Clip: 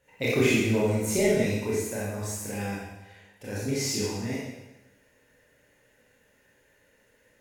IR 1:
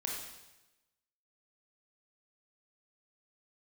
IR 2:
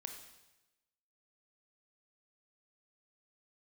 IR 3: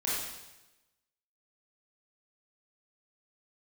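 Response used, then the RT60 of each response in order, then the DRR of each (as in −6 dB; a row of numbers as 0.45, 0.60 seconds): 3; 1.0, 1.0, 1.0 seconds; −2.0, 4.0, −8.0 decibels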